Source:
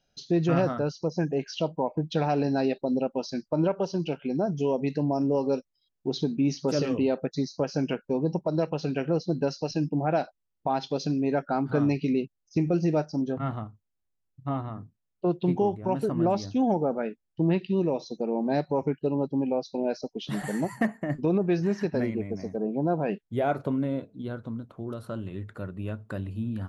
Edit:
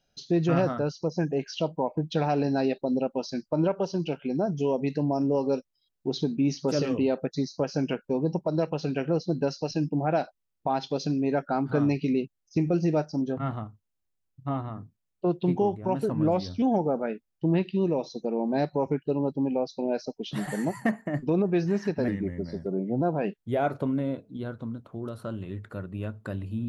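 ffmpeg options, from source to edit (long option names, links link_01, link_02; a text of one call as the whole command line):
ffmpeg -i in.wav -filter_complex "[0:a]asplit=5[link_01][link_02][link_03][link_04][link_05];[link_01]atrim=end=16.104[link_06];[link_02]atrim=start=16.1:end=16.58,asetpts=PTS-STARTPTS,asetrate=40572,aresample=44100[link_07];[link_03]atrim=start=16.576:end=22.044[link_08];[link_04]atrim=start=22.04:end=22.86,asetpts=PTS-STARTPTS,asetrate=38808,aresample=44100,atrim=end_sample=41093,asetpts=PTS-STARTPTS[link_09];[link_05]atrim=start=22.856[link_10];[link_06][link_07]acrossfade=duration=0.004:curve1=hsin:curve2=hsin[link_11];[link_11][link_08]acrossfade=duration=0.004:curve1=hsin:curve2=hsin[link_12];[link_12][link_09]acrossfade=duration=0.004:curve1=hsin:curve2=hsin[link_13];[link_13][link_10]acrossfade=duration=0.004:curve1=hsin:curve2=hsin" out.wav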